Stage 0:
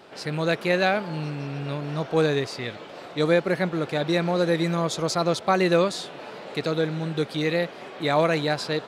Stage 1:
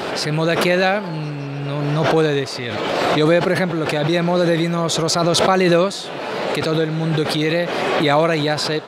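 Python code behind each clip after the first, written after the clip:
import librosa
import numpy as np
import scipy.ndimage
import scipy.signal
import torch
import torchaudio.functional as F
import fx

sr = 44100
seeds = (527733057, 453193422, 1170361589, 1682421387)

y = fx.pre_swell(x, sr, db_per_s=20.0)
y = y * 10.0 ** (4.5 / 20.0)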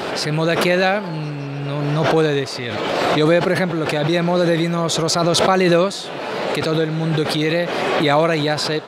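y = x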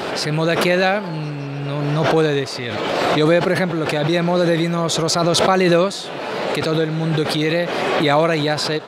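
y = fx.end_taper(x, sr, db_per_s=450.0)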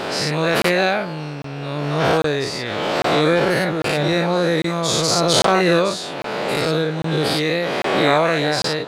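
y = fx.spec_dilate(x, sr, span_ms=120)
y = fx.buffer_crackle(y, sr, first_s=0.62, period_s=0.8, block=1024, kind='zero')
y = y * 10.0 ** (-5.0 / 20.0)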